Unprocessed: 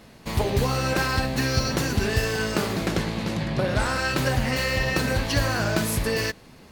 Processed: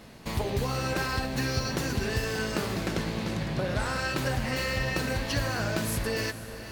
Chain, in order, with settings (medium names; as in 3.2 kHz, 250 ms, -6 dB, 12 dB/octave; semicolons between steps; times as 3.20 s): compression 1.5:1, threshold -36 dBFS, peak gain reduction 7 dB; echo that smears into a reverb 486 ms, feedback 59%, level -13 dB